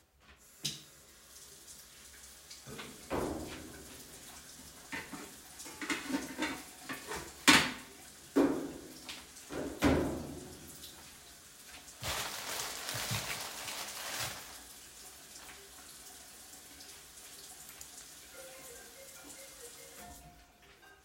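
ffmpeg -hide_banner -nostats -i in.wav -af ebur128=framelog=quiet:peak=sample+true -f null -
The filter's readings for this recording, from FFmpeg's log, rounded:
Integrated loudness:
  I:         -35.8 LUFS
  Threshold: -48.4 LUFS
Loudness range:
  LRA:        17.2 LU
  Threshold: -57.9 LUFS
  LRA low:   -49.1 LUFS
  LRA high:  -32.0 LUFS
Sample peak:
  Peak:       -7.4 dBFS
True peak:
  Peak:       -7.3 dBFS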